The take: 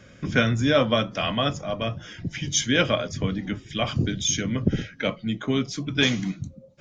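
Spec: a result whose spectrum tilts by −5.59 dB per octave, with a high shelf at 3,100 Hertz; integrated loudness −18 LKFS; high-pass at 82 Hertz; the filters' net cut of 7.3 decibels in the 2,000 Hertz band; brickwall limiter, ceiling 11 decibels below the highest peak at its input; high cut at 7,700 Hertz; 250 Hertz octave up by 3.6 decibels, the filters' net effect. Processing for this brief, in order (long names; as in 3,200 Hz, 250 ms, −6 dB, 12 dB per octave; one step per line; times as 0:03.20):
high-pass filter 82 Hz
low-pass filter 7,700 Hz
parametric band 250 Hz +4.5 dB
parametric band 2,000 Hz −8.5 dB
high-shelf EQ 3,100 Hz −5 dB
level +9 dB
brickwall limiter −7 dBFS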